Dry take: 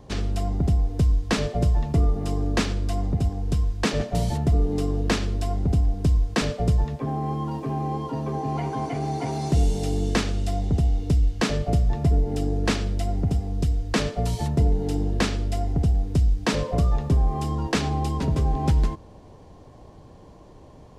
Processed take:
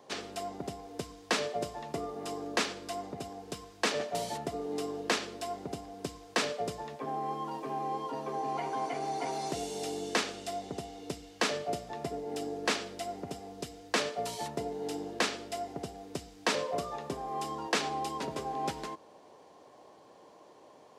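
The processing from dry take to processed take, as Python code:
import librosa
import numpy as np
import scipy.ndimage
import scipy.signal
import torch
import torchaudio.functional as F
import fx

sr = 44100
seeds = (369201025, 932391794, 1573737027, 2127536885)

y = scipy.signal.sosfilt(scipy.signal.butter(2, 440.0, 'highpass', fs=sr, output='sos'), x)
y = y * librosa.db_to_amplitude(-2.5)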